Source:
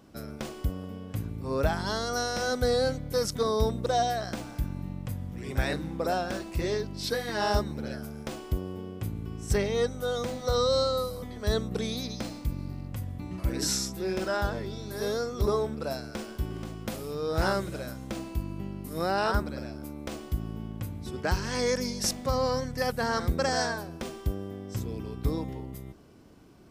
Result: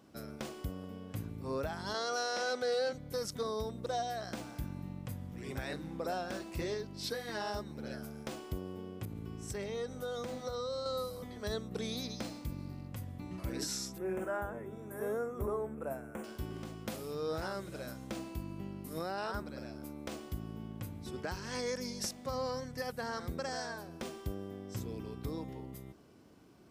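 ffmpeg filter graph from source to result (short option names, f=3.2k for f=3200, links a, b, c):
-filter_complex "[0:a]asettb=1/sr,asplit=3[a][b][c];[a]atrim=end=1.944[d];[b]atrim=start=1.94:end=2.93,asetpts=PTS-STARTPTS,afade=t=in:d=0.004:c=qsin,afade=t=out:st=0.986:d=0.004:c=qsin,highpass=360,lowpass=6.3k,aeval=exprs='0.15*sin(PI/2*1.41*val(0)/0.15)':c=same[e];[c]atrim=start=2.926[f];[d][e]acrossfade=d=0.004:c1=hsin:c2=qsin[g];[g][f]acrossfade=d=0.004:c1=qsin:c2=hsin,asettb=1/sr,asplit=3[h][i][j];[h]atrim=end=9.054[k];[i]atrim=start=9.05:end=10.86,asetpts=PTS-STARTPTS,afade=t=in:d=0.004:c=qsin,afade=t=out:st=1.806:d=0.004:c=qsin,acompressor=threshold=-30dB:ratio=5:attack=3.2:release=140:knee=1:detection=peak,aecho=1:1:127:0.0841,atrim=end_sample=79821,adynamicequalizer=threshold=0.00398:dfrequency=2200:dqfactor=0.7:tfrequency=2200:tqfactor=0.7:attack=5:release=100:ratio=0.375:range=1.5:mode=cutabove:tftype=highshelf[l];[j]atrim=start=10.856[m];[k][l]acrossfade=d=0.004:c1=hsin:c2=qsin[n];[n][m]acrossfade=d=0.004:c1=qsin:c2=hsin,asettb=1/sr,asplit=3[o][p][q];[o]atrim=end=13.984[r];[p]atrim=start=13.98:end=16.24,asetpts=PTS-STARTPTS,afade=t=in:d=0.004:c=qsin,afade=t=out:st=2.256:d=0.004:c=qsin,asuperstop=centerf=4600:order=4:qfactor=0.8,equalizer=f=2.9k:w=0.99:g=-4.5,bandreject=f=50:t=h:w=6,bandreject=f=100:t=h:w=6,bandreject=f=150:t=h:w=6,bandreject=f=200:t=h:w=6,bandreject=f=250:t=h:w=6,bandreject=f=300:t=h:w=6,bandreject=f=350:t=h:w=6,bandreject=f=400:t=h:w=6[s];[q]atrim=start=16.236[t];[r][s]acrossfade=d=0.004:c1=hsin:c2=qsin[u];[u][t]acrossfade=d=0.004:c1=qsin:c2=hsin,highpass=f=110:p=1,alimiter=limit=-22dB:level=0:latency=1:release=416,volume=-4.5dB"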